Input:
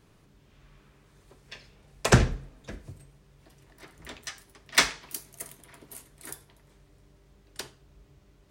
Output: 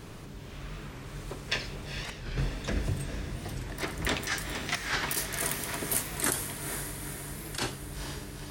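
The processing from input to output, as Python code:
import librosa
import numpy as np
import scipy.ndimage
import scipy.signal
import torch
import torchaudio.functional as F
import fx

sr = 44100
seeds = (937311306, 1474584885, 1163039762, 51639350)

y = fx.dynamic_eq(x, sr, hz=1700.0, q=2.1, threshold_db=-46.0, ratio=4.0, max_db=7)
y = fx.over_compress(y, sr, threshold_db=-42.0, ratio=-1.0)
y = fx.echo_diffused(y, sr, ms=460, feedback_pct=60, wet_db=-6.5)
y = fx.record_warp(y, sr, rpm=45.0, depth_cents=160.0)
y = y * librosa.db_to_amplitude(6.0)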